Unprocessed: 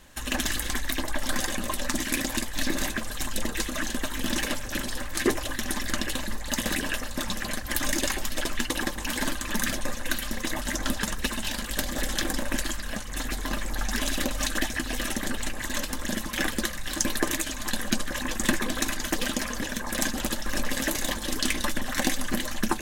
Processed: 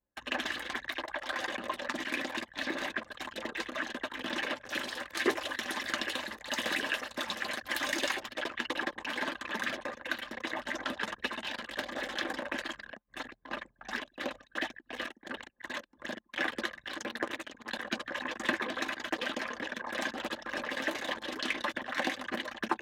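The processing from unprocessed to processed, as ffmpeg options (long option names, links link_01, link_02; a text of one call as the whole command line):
ffmpeg -i in.wav -filter_complex "[0:a]asettb=1/sr,asplit=3[link_01][link_02][link_03];[link_01]atrim=end=0.864[link_04];[link_02]atrim=start=0.86:end=1.4,asetpts=PTS-STARTPTS,afade=type=in:duration=0.004:curve=qsin,afade=type=out:start_time=0.536:duration=0.004:curve=qsin,equalizer=frequency=190:width_type=o:width=0.89:gain=-14[link_05];[link_03]atrim=start=1.396[link_06];[link_04][link_05]acrossfade=duration=0.004:curve1=hsin:curve2=qsin[link_07];[link_07][link_06]acrossfade=duration=0.004:curve1=qsin:curve2=hsin,asettb=1/sr,asplit=3[link_08][link_09][link_10];[link_08]atrim=end=4.654[link_11];[link_09]atrim=start=4.65:end=8.2,asetpts=PTS-STARTPTS,afade=type=in:duration=0.004:curve=qsin,afade=type=out:start_time=3.546:duration=0.004:curve=qsin,highshelf=frequency=4100:gain=9.5[link_12];[link_10]atrim=start=8.196[link_13];[link_11][link_12]acrossfade=duration=0.004:curve1=hsin:curve2=qsin[link_14];[link_14][link_13]acrossfade=duration=0.004:curve1=qsin:curve2=hsin,asplit=3[link_15][link_16][link_17];[link_15]afade=type=out:start_time=12.84:duration=0.02[link_18];[link_16]tremolo=f=2.8:d=0.81,afade=type=in:start_time=12.84:duration=0.02,afade=type=out:start_time=16.45:duration=0.02[link_19];[link_17]afade=type=in:start_time=16.45:duration=0.02[link_20];[link_18][link_19][link_20]amix=inputs=3:normalize=0,asplit=3[link_21][link_22][link_23];[link_21]afade=type=out:start_time=16.96:duration=0.02[link_24];[link_22]tremolo=f=230:d=0.75,afade=type=in:start_time=16.96:duration=0.02,afade=type=out:start_time=17.7:duration=0.02[link_25];[link_23]afade=type=in:start_time=17.7:duration=0.02[link_26];[link_24][link_25][link_26]amix=inputs=3:normalize=0,anlmdn=6.31,highpass=88,acrossover=split=320 3900:gain=0.158 1 0.0794[link_27][link_28][link_29];[link_27][link_28][link_29]amix=inputs=3:normalize=0,volume=-2dB" out.wav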